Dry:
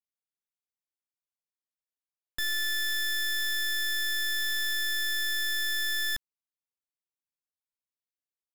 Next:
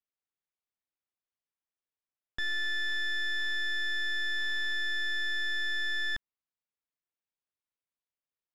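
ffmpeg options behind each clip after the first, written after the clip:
ffmpeg -i in.wav -af "lowpass=3200" out.wav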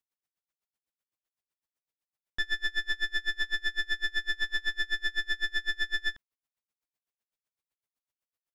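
ffmpeg -i in.wav -af "aeval=exprs='val(0)*pow(10,-30*(0.5-0.5*cos(2*PI*7.9*n/s))/20)':channel_layout=same,volume=6.5dB" out.wav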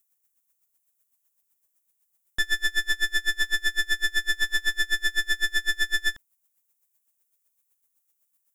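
ffmpeg -i in.wav -af "aexciter=amount=6:drive=3.4:freq=6500,volume=5.5dB" out.wav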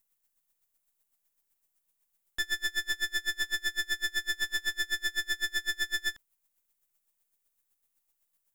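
ffmpeg -i in.wav -af "aeval=exprs='if(lt(val(0),0),0.447*val(0),val(0))':channel_layout=same,volume=-2dB" out.wav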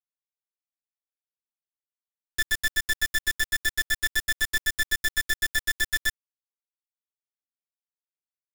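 ffmpeg -i in.wav -af "acrusher=bits=4:mix=0:aa=0.000001,volume=4dB" out.wav

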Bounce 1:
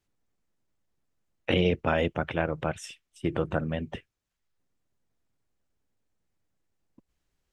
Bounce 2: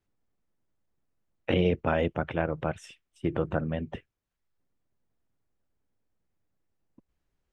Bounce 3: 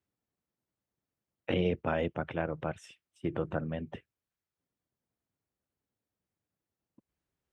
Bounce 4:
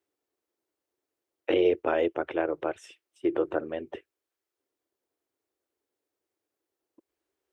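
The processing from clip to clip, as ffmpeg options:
ffmpeg -i in.wav -af "highshelf=frequency=2800:gain=-9.5" out.wav
ffmpeg -i in.wav -af "highpass=77,volume=-4.5dB" out.wav
ffmpeg -i in.wav -af "lowshelf=frequency=250:width_type=q:width=3:gain=-12,volume=3dB" out.wav

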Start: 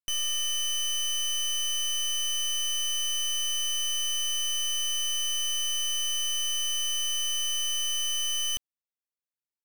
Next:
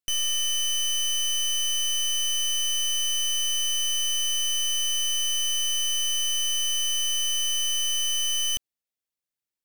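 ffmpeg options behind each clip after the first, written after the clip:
ffmpeg -i in.wav -af "equalizer=frequency=1100:width_type=o:width=1:gain=-5,volume=3.5dB" out.wav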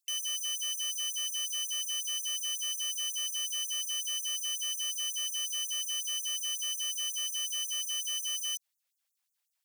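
ffmpeg -i in.wav -af "alimiter=level_in=10dB:limit=-24dB:level=0:latency=1,volume=-10dB,asoftclip=type=tanh:threshold=-39.5dB,afftfilt=real='re*gte(b*sr/1024,490*pow(6400/490,0.5+0.5*sin(2*PI*5.5*pts/sr)))':imag='im*gte(b*sr/1024,490*pow(6400/490,0.5+0.5*sin(2*PI*5.5*pts/sr)))':win_size=1024:overlap=0.75,volume=8.5dB" out.wav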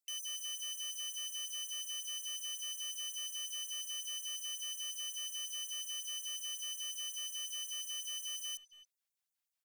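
ffmpeg -i in.wav -filter_complex "[0:a]asplit=2[link_01][link_02];[link_02]adelay=280,highpass=300,lowpass=3400,asoftclip=type=hard:threshold=-36dB,volume=-12dB[link_03];[link_01][link_03]amix=inputs=2:normalize=0,volume=-7.5dB" out.wav

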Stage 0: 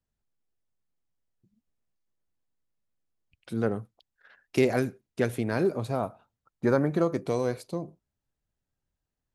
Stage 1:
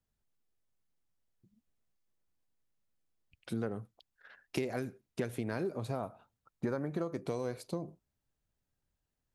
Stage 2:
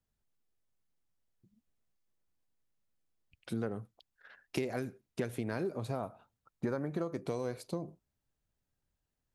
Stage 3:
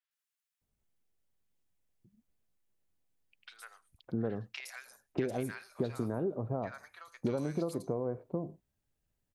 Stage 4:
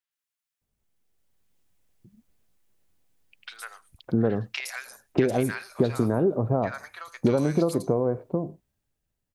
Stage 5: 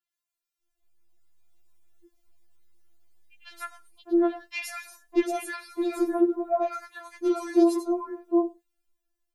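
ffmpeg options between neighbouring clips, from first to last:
ffmpeg -i in.wav -af "acompressor=threshold=-32dB:ratio=6" out.wav
ffmpeg -i in.wav -af anull out.wav
ffmpeg -i in.wav -filter_complex "[0:a]acrossover=split=1200|4800[link_01][link_02][link_03];[link_03]adelay=110[link_04];[link_01]adelay=610[link_05];[link_05][link_02][link_04]amix=inputs=3:normalize=0,volume=2dB" out.wav
ffmpeg -i in.wav -af "dynaudnorm=framelen=200:gausssize=11:maxgain=11dB" out.wav
ffmpeg -i in.wav -af "afftfilt=real='re*4*eq(mod(b,16),0)':imag='im*4*eq(mod(b,16),0)':win_size=2048:overlap=0.75,volume=1.5dB" out.wav

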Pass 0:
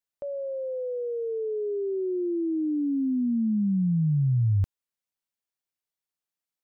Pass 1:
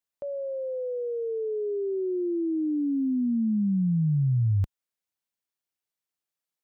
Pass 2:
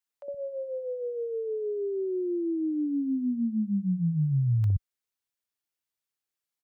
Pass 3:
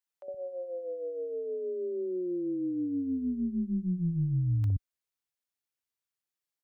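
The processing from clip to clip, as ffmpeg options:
ffmpeg -i in.wav -af "highpass=frequency=43:poles=1" out.wav
ffmpeg -i in.wav -filter_complex "[0:a]acrossover=split=200|660[link_01][link_02][link_03];[link_02]adelay=60[link_04];[link_01]adelay=120[link_05];[link_05][link_04][link_03]amix=inputs=3:normalize=0" out.wav
ffmpeg -i in.wav -af "tremolo=f=180:d=0.261,volume=-2dB" out.wav

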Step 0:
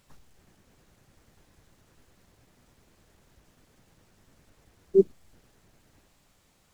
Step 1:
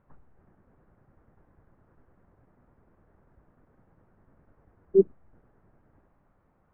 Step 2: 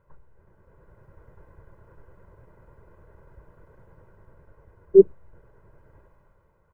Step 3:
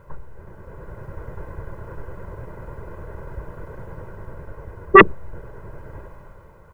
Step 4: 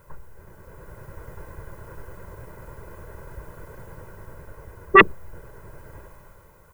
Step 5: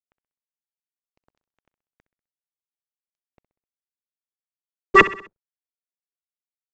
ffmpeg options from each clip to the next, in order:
ffmpeg -i in.wav -af "lowpass=frequency=1500:width=0.5412,lowpass=frequency=1500:width=1.3066" out.wav
ffmpeg -i in.wav -af "aecho=1:1:2:0.72,dynaudnorm=framelen=140:gausssize=11:maxgain=8dB" out.wav
ffmpeg -i in.wav -af "aeval=exprs='0.841*sin(PI/2*4.47*val(0)/0.841)':channel_layout=same" out.wav
ffmpeg -i in.wav -af "crystalizer=i=4.5:c=0,volume=-6dB" out.wav
ffmpeg -i in.wav -af "aresample=16000,aeval=exprs='sgn(val(0))*max(abs(val(0))-0.0398,0)':channel_layout=same,aresample=44100,aecho=1:1:64|128|192|256:0.158|0.0761|0.0365|0.0175" out.wav

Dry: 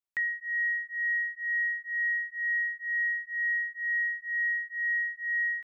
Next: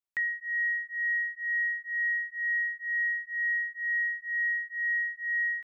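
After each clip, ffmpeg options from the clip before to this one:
ffmpeg -i in.wav -af anull out.wav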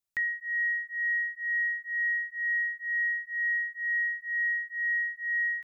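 ffmpeg -i in.wav -af "bass=frequency=250:gain=7,treble=frequency=4000:gain=6" out.wav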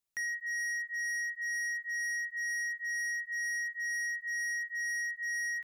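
ffmpeg -i in.wav -af "volume=33.5dB,asoftclip=hard,volume=-33.5dB" out.wav

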